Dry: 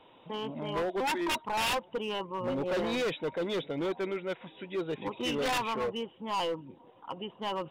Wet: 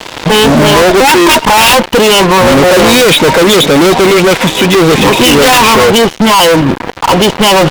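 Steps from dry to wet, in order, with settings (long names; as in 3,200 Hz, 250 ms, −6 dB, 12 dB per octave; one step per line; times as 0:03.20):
high-shelf EQ 4,800 Hz +4.5 dB
fuzz pedal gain 52 dB, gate −54 dBFS
level +9 dB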